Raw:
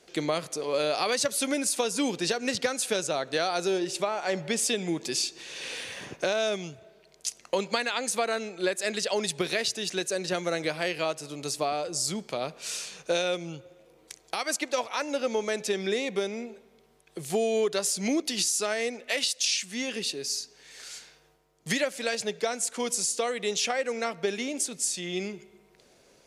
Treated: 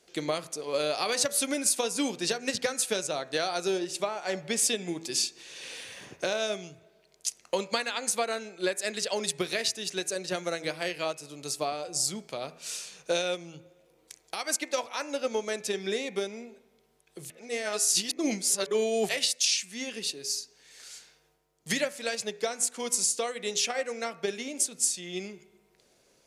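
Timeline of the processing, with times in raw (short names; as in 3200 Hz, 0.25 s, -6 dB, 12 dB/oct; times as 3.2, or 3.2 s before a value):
17.3–19.09 reverse
whole clip: high shelf 5900 Hz +5 dB; de-hum 82.12 Hz, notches 32; upward expander 1.5:1, over -34 dBFS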